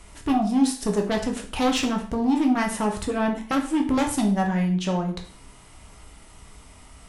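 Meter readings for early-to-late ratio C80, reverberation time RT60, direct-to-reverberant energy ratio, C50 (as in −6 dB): 13.5 dB, 0.50 s, 1.5 dB, 9.0 dB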